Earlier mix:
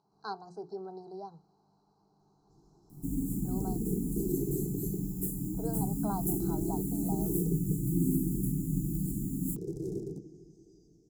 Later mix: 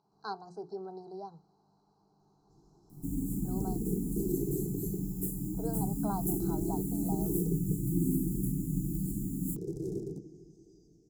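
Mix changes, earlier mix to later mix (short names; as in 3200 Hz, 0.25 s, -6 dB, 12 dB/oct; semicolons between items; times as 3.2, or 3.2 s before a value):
second sound -3.5 dB; reverb: on, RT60 0.45 s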